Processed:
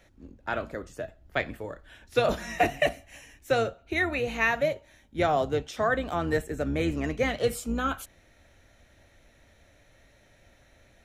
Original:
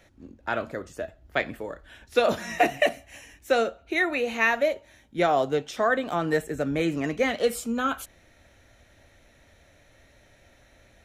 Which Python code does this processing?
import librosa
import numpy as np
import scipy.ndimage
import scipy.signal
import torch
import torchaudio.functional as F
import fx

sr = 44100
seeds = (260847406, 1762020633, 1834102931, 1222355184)

y = fx.octave_divider(x, sr, octaves=2, level_db=-3.0)
y = y * 10.0 ** (-2.5 / 20.0)